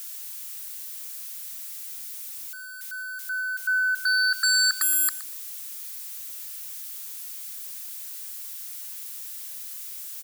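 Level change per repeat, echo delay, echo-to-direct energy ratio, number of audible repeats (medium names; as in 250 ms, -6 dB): -15.5 dB, 119 ms, -16.0 dB, 2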